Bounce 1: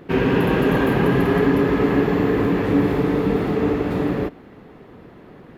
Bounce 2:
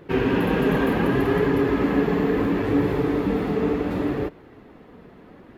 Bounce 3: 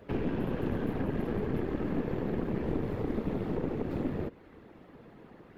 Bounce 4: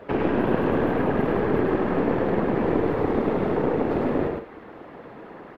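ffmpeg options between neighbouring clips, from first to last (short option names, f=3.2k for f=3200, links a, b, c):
-af "flanger=delay=1.9:depth=2.9:regen=-52:speed=0.69:shape=triangular,volume=1dB"
-filter_complex "[0:a]afftfilt=real='hypot(re,im)*cos(2*PI*random(0))':imag='hypot(re,im)*sin(2*PI*random(1))':win_size=512:overlap=0.75,aeval=exprs='0.224*(cos(1*acos(clip(val(0)/0.224,-1,1)))-cos(1*PI/2))+0.0398*(cos(4*acos(clip(val(0)/0.224,-1,1)))-cos(4*PI/2))':c=same,acrossover=split=250|690[a][b][c];[a]acompressor=threshold=-30dB:ratio=4[d];[b]acompressor=threshold=-36dB:ratio=4[e];[c]acompressor=threshold=-48dB:ratio=4[f];[d][e][f]amix=inputs=3:normalize=0"
-filter_complex "[0:a]equalizer=f=960:w=0.3:g=13.5,asplit=2[a][b];[b]aecho=0:1:105|154.5:0.708|0.282[c];[a][c]amix=inputs=2:normalize=0"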